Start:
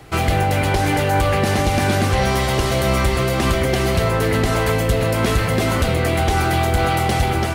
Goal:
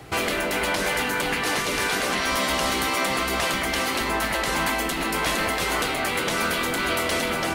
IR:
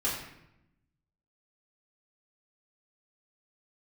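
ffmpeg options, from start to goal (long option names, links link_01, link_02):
-af "highpass=frequency=72:poles=1,afftfilt=real='re*lt(hypot(re,im),0.355)':imag='im*lt(hypot(re,im),0.355)':win_size=1024:overlap=0.75"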